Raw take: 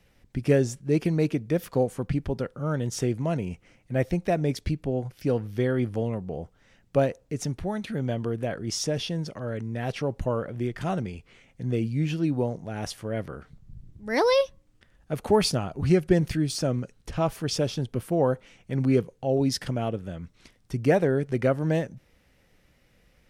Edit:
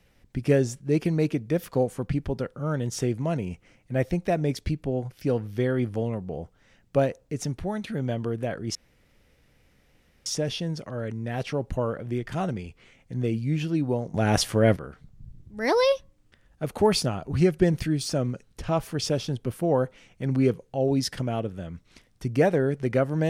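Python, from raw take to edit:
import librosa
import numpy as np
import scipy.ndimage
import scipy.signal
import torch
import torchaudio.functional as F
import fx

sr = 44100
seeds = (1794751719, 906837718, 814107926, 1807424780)

y = fx.edit(x, sr, fx.insert_room_tone(at_s=8.75, length_s=1.51),
    fx.clip_gain(start_s=12.63, length_s=0.62, db=11.0), tone=tone)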